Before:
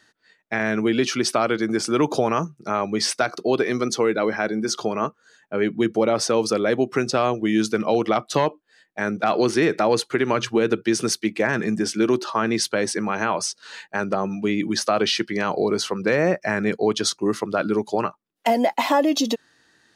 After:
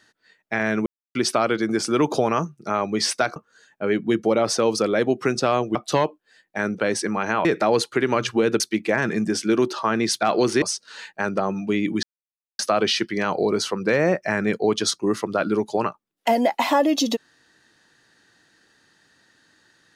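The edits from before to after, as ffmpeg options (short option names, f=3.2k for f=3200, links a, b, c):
-filter_complex "[0:a]asplit=11[a][b][c][d][e][f][g][h][i][j][k];[a]atrim=end=0.86,asetpts=PTS-STARTPTS,afade=t=out:st=0.856:d=0.004:c=hsin[l];[b]atrim=start=0.86:end=1.15,asetpts=PTS-STARTPTS,volume=0[m];[c]atrim=start=1.15:end=3.362,asetpts=PTS-STARTPTS,afade=t=in:d=0.004:c=hsin[n];[d]atrim=start=5.068:end=7.462[o];[e]atrim=start=8.168:end=9.222[p];[f]atrim=start=12.718:end=13.372[q];[g]atrim=start=9.628:end=10.782[r];[h]atrim=start=11.108:end=12.722[s];[i]atrim=start=9.218:end=9.632[t];[j]atrim=start=13.368:end=14.78,asetpts=PTS-STARTPTS,afade=t=out:st=1.408:d=0.004:c=hsin,apad=pad_dur=0.56[u];[k]atrim=start=14.78,asetpts=PTS-STARTPTS,afade=t=in:d=0.004:c=hsin[v];[l][m][n]concat=n=3:v=0:a=1[w];[w][o]acrossfade=d=0.004:c1=hsin:c2=hsin[x];[x][p]acrossfade=d=0.004:c1=hsin:c2=hsin[y];[y][q]acrossfade=d=0.004:c1=hsin:c2=hsin[z];[z][r]acrossfade=d=0.004:c1=hsin:c2=hsin[aa];[aa][s]acrossfade=d=0.004:c1=hsin:c2=hsin[ab];[ab][t]acrossfade=d=0.004:c1=hsin:c2=hsin[ac];[u][v]concat=n=2:v=0:a=1[ad];[ac][ad]acrossfade=d=0.004:c1=hsin:c2=hsin"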